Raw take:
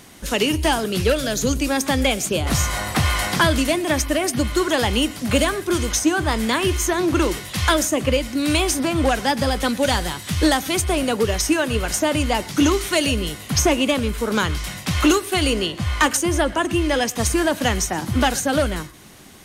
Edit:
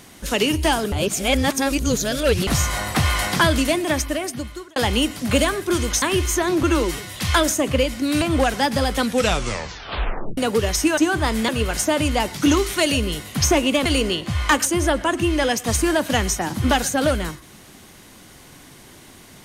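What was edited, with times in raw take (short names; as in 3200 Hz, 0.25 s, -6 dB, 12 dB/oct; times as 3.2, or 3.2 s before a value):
0.92–2.47 reverse
3.82–4.76 fade out
6.02–6.53 move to 11.63
7.14–7.49 stretch 1.5×
8.55–8.87 cut
9.7 tape stop 1.33 s
14–15.37 cut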